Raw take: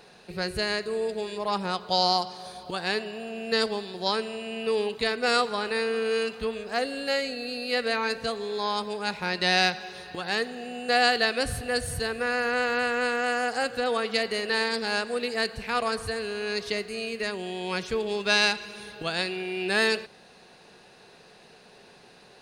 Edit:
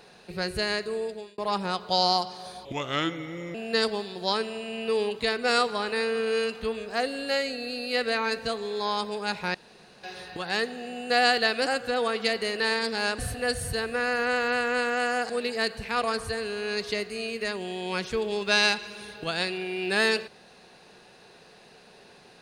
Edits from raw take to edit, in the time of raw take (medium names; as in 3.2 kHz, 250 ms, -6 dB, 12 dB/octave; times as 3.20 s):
0.72–1.38 s: fade out equal-power
2.65–3.33 s: speed 76%
9.33–9.82 s: room tone
13.56–15.08 s: move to 11.45 s